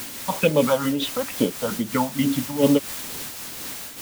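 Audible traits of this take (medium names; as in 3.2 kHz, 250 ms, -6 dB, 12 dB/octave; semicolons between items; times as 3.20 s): phasing stages 4, 2.3 Hz, lowest notch 350–1800 Hz; a quantiser's noise floor 6-bit, dither triangular; random flutter of the level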